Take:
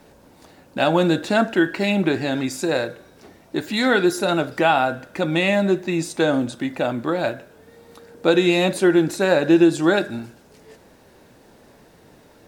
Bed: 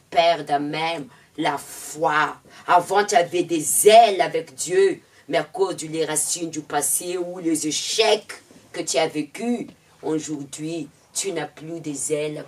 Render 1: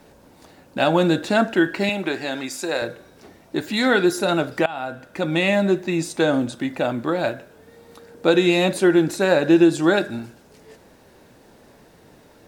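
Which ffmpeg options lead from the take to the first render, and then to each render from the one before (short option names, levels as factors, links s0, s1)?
-filter_complex "[0:a]asettb=1/sr,asplit=3[s0][s1][s2];[s0]atrim=end=1.894[s3];[s1]atrim=start=1.89:end=2.82,asetpts=PTS-STARTPTS,afade=t=in:d=0.004:c=qsin,afade=t=out:st=0.926:d=0.004:c=qsin,highpass=f=540:p=1[s4];[s2]atrim=start=2.816[s5];[s3][s4]acrossfade=d=0.004:c1=hsin:c2=qsin[s6];[s6][s5]acrossfade=d=0.004:c1=qsin:c2=hsin,asplit=2[s7][s8];[s7]atrim=end=4.66,asetpts=PTS-STARTPTS,afade=t=out:st=4.656:d=0.004:c=hsin:silence=0.0891251[s9];[s8]atrim=start=4.66,asetpts=PTS-STARTPTS,afade=t=in:d=0.91:c=qsin:silence=0.0891251[s10];[s9][s10]concat=n=2:v=0:a=1"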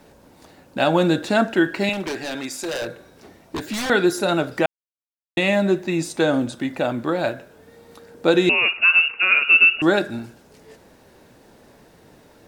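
-filter_complex "[0:a]asettb=1/sr,asplit=3[s0][s1][s2];[s0]atrim=end=1.934[s3];[s1]atrim=start=1.93:end=3.9,asetpts=PTS-STARTPTS,afade=t=in:d=0.004:c=qsin,afade=t=out:st=1.966:d=0.004:c=qsin,aeval=exprs='0.0891*(abs(mod(val(0)/0.0891+3,4)-2)-1)':c=same[s4];[s2]atrim=start=3.896[s5];[s3][s4]acrossfade=d=0.004:c1=hsin:c2=qsin[s6];[s6][s5]acrossfade=d=0.004:c1=qsin:c2=hsin,asettb=1/sr,asplit=3[s7][s8][s9];[s7]atrim=end=8.494[s10];[s8]atrim=start=8.49:end=9.82,asetpts=PTS-STARTPTS,afade=t=in:d=0.004:c=qsin,afade=t=out:st=1.326:d=0.004:c=qsin,lowpass=f=2600:t=q:w=0.5098,lowpass=f=2600:t=q:w=0.6013,lowpass=f=2600:t=q:w=0.9,lowpass=f=2600:t=q:w=2.563,afreqshift=-3000[s11];[s9]atrim=start=9.816[s12];[s10][s11]acrossfade=d=0.004:c1=hsin:c2=qsin[s13];[s13][s12]acrossfade=d=0.004:c1=qsin:c2=hsin,asplit=3[s14][s15][s16];[s14]atrim=end=4.66,asetpts=PTS-STARTPTS,afade=t=out:st=4.656:d=0.004:c=hsin[s17];[s15]atrim=start=4.66:end=5.37,asetpts=PTS-STARTPTS,volume=0[s18];[s16]atrim=start=5.37,asetpts=PTS-STARTPTS,afade=t=in:d=0.004:c=hsin[s19];[s17][s18][s19]concat=n=3:v=0:a=1"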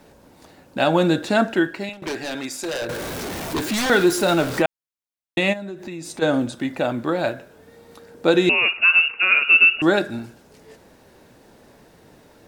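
-filter_complex "[0:a]asettb=1/sr,asplit=3[s0][s1][s2];[s0]atrim=end=2.894[s3];[s1]atrim=start=2.89:end=4.62,asetpts=PTS-STARTPTS,afade=t=in:d=0.004:c=qsin,afade=t=out:st=1.726:d=0.004:c=qsin,aeval=exprs='val(0)+0.5*0.0596*sgn(val(0))':c=same[s4];[s2]atrim=start=4.616[s5];[s3][s4]acrossfade=d=0.004:c1=hsin:c2=qsin[s6];[s6][s5]acrossfade=d=0.004:c1=qsin:c2=hsin,asplit=3[s7][s8][s9];[s7]afade=t=out:st=5.52:d=0.02[s10];[s8]acompressor=threshold=0.0355:ratio=10:attack=3.2:release=140:knee=1:detection=peak,afade=t=in:st=5.52:d=0.02,afade=t=out:st=6.21:d=0.02[s11];[s9]afade=t=in:st=6.21:d=0.02[s12];[s10][s11][s12]amix=inputs=3:normalize=0,asplit=2[s13][s14];[s13]atrim=end=2.02,asetpts=PTS-STARTPTS,afade=t=out:st=1.52:d=0.5:silence=0.0944061[s15];[s14]atrim=start=2.02,asetpts=PTS-STARTPTS,afade=t=in:d=0.004:c=hsin:silence=0.0944061[s16];[s15][s16]concat=n=2:v=0:a=1"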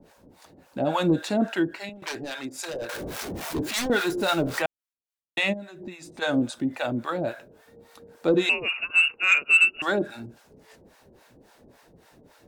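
-filter_complex "[0:a]acrossover=split=630[s0][s1];[s0]aeval=exprs='val(0)*(1-1/2+1/2*cos(2*PI*3.6*n/s))':c=same[s2];[s1]aeval=exprs='val(0)*(1-1/2-1/2*cos(2*PI*3.6*n/s))':c=same[s3];[s2][s3]amix=inputs=2:normalize=0,asoftclip=type=tanh:threshold=0.355"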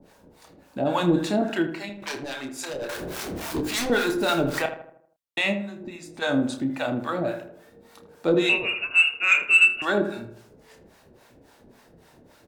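-filter_complex "[0:a]asplit=2[s0][s1];[s1]adelay=29,volume=0.398[s2];[s0][s2]amix=inputs=2:normalize=0,asplit=2[s3][s4];[s4]adelay=79,lowpass=f=1600:p=1,volume=0.355,asplit=2[s5][s6];[s6]adelay=79,lowpass=f=1600:p=1,volume=0.5,asplit=2[s7][s8];[s8]adelay=79,lowpass=f=1600:p=1,volume=0.5,asplit=2[s9][s10];[s10]adelay=79,lowpass=f=1600:p=1,volume=0.5,asplit=2[s11][s12];[s12]adelay=79,lowpass=f=1600:p=1,volume=0.5,asplit=2[s13][s14];[s14]adelay=79,lowpass=f=1600:p=1,volume=0.5[s15];[s3][s5][s7][s9][s11][s13][s15]amix=inputs=7:normalize=0"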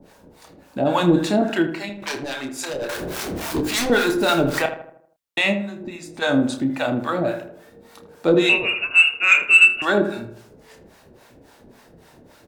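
-af "volume=1.68"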